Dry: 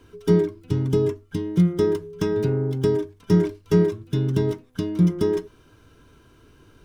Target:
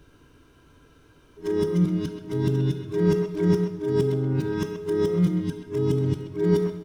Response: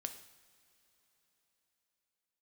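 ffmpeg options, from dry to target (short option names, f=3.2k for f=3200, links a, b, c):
-filter_complex "[0:a]areverse,asplit=2[a][b];[b]adelay=130,highpass=300,lowpass=3.4k,asoftclip=type=hard:threshold=-15dB,volume=-7dB[c];[a][c]amix=inputs=2:normalize=0[d];[1:a]atrim=start_sample=2205[e];[d][e]afir=irnorm=-1:irlink=0"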